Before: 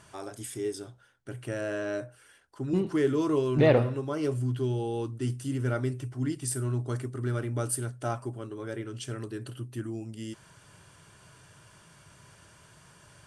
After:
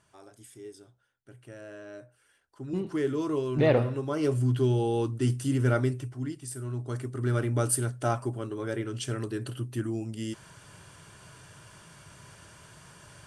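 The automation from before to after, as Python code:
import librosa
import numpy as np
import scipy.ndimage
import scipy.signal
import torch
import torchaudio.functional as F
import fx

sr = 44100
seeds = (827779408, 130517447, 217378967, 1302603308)

y = fx.gain(x, sr, db=fx.line((1.92, -12.0), (2.94, -3.0), (3.49, -3.0), (4.54, 4.5), (5.78, 4.5), (6.47, -7.5), (7.38, 4.0)))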